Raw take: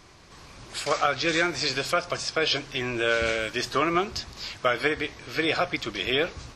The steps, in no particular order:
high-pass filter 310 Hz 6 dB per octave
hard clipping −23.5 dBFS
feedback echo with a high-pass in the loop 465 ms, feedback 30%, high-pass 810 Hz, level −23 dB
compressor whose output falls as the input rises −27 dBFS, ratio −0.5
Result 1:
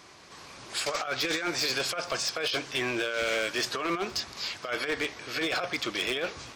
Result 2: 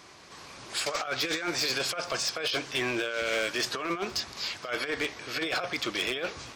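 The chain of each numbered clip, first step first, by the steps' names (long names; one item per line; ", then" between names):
high-pass filter, then compressor whose output falls as the input rises, then hard clipping, then feedback echo with a high-pass in the loop
compressor whose output falls as the input rises, then high-pass filter, then hard clipping, then feedback echo with a high-pass in the loop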